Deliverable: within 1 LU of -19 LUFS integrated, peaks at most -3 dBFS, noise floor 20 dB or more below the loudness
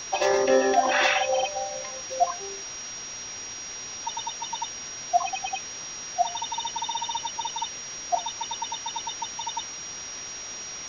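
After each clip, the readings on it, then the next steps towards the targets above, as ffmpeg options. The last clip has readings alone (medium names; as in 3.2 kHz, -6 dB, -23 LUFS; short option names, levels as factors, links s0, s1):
steady tone 5.7 kHz; tone level -36 dBFS; noise floor -38 dBFS; noise floor target -48 dBFS; loudness -28.0 LUFS; peak level -8.5 dBFS; loudness target -19.0 LUFS
-> -af "bandreject=f=5700:w=30"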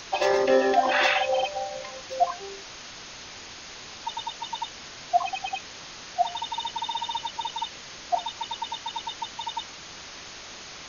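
steady tone not found; noise floor -43 dBFS; noise floor target -48 dBFS
-> -af "afftdn=nr=6:nf=-43"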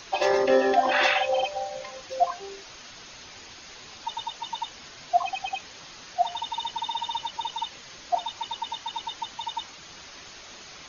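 noise floor -46 dBFS; noise floor target -48 dBFS
-> -af "afftdn=nr=6:nf=-46"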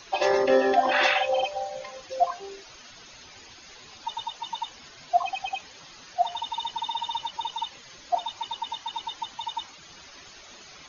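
noise floor -49 dBFS; loudness -28.0 LUFS; peak level -8.5 dBFS; loudness target -19.0 LUFS
-> -af "volume=2.82,alimiter=limit=0.708:level=0:latency=1"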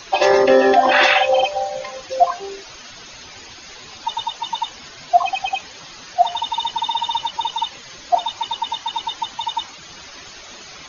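loudness -19.5 LUFS; peak level -3.0 dBFS; noise floor -40 dBFS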